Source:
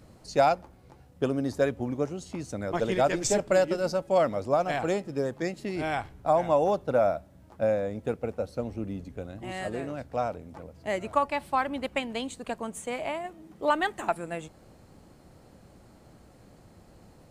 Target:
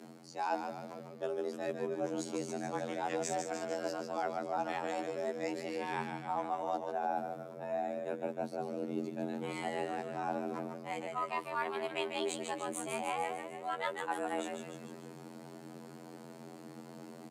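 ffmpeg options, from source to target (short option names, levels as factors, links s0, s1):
-filter_complex "[0:a]areverse,acompressor=threshold=0.0141:ratio=8,areverse,asplit=9[s0][s1][s2][s3][s4][s5][s6][s7][s8];[s1]adelay=149,afreqshift=-65,volume=0.501[s9];[s2]adelay=298,afreqshift=-130,volume=0.302[s10];[s3]adelay=447,afreqshift=-195,volume=0.18[s11];[s4]adelay=596,afreqshift=-260,volume=0.108[s12];[s5]adelay=745,afreqshift=-325,volume=0.0653[s13];[s6]adelay=894,afreqshift=-390,volume=0.0389[s14];[s7]adelay=1043,afreqshift=-455,volume=0.0234[s15];[s8]adelay=1192,afreqshift=-520,volume=0.014[s16];[s0][s9][s10][s11][s12][s13][s14][s15][s16]amix=inputs=9:normalize=0,afftfilt=real='hypot(re,im)*cos(PI*b)':imag='0':win_size=2048:overlap=0.75,afreqshift=140,volume=2"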